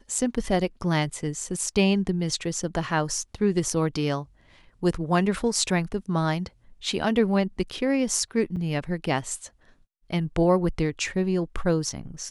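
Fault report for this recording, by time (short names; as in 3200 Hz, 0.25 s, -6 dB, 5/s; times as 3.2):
8.56–8.57 gap 5.9 ms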